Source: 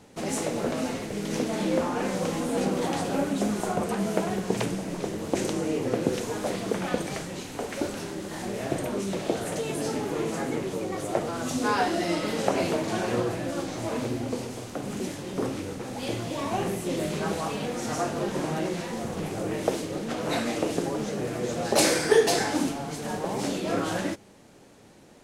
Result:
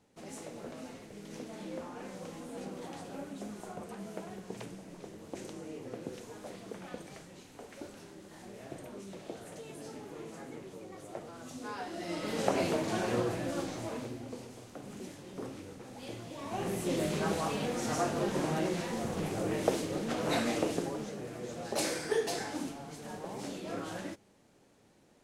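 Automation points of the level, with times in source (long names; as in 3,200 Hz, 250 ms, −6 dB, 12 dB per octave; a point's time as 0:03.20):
0:11.85 −16 dB
0:12.41 −4.5 dB
0:13.64 −4.5 dB
0:14.17 −12.5 dB
0:16.39 −12.5 dB
0:16.81 −3 dB
0:20.56 −3 dB
0:21.22 −11.5 dB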